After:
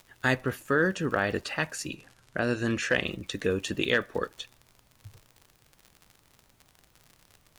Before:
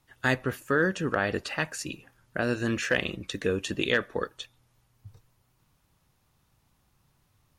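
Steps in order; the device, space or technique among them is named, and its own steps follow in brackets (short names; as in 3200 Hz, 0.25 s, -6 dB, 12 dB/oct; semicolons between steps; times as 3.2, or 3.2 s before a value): vinyl LP (crackle 63/s -38 dBFS; pink noise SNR 35 dB); 1.94–3.04 LPF 11000 Hz 12 dB/oct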